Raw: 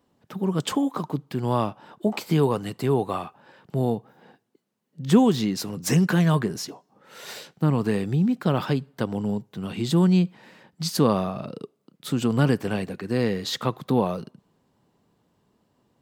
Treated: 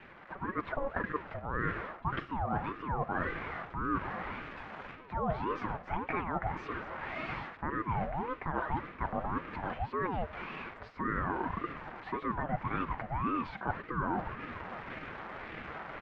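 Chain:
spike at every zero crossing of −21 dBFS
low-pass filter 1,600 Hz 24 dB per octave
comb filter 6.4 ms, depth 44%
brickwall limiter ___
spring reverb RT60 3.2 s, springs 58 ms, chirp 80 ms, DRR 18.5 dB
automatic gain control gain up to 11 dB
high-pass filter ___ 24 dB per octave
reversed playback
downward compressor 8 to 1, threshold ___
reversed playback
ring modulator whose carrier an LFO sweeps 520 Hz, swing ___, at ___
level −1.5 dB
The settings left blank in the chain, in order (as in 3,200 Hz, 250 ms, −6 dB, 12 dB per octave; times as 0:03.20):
−11 dBFS, 370 Hz, −26 dBFS, 50%, 1.8 Hz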